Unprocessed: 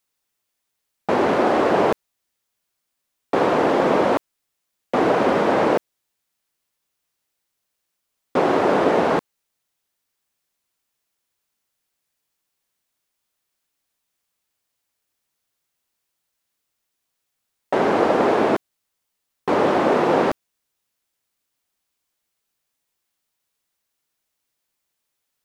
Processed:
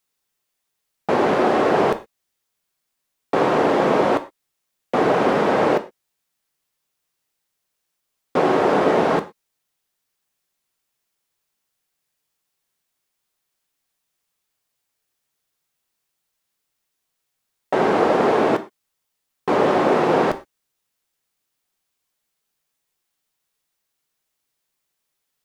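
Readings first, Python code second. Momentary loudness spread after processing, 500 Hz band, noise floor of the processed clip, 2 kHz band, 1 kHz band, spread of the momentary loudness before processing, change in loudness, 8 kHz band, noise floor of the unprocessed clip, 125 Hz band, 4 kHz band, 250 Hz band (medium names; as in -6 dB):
8 LU, +0.5 dB, -78 dBFS, +0.5 dB, +0.5 dB, 8 LU, +0.5 dB, no reading, -78 dBFS, +1.5 dB, +0.5 dB, 0.0 dB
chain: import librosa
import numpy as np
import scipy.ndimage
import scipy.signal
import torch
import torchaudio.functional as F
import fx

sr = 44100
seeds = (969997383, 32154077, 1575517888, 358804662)

y = fx.rev_gated(x, sr, seeds[0], gate_ms=140, shape='falling', drr_db=9.0)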